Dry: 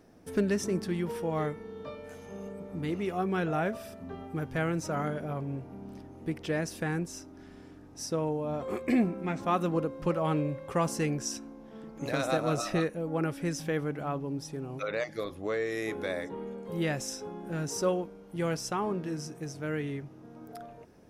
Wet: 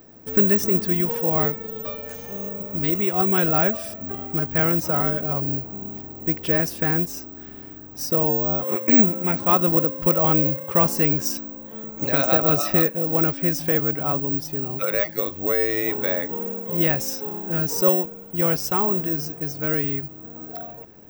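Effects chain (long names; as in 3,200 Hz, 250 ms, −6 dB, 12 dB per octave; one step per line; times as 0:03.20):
0:01.59–0:03.94: high-shelf EQ 4,800 Hz +11 dB
bad sample-rate conversion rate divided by 2×, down filtered, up zero stuff
level +7 dB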